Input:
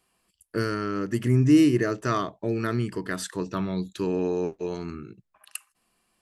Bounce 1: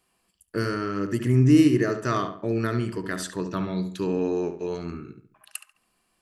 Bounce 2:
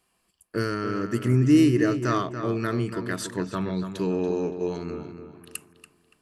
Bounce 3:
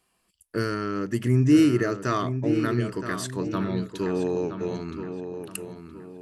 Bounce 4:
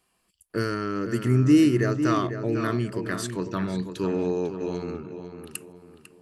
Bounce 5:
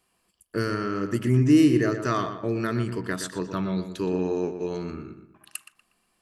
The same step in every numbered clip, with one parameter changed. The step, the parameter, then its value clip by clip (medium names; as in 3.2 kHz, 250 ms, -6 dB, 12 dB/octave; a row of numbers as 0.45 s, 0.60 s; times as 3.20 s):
filtered feedback delay, time: 70 ms, 285 ms, 970 ms, 499 ms, 120 ms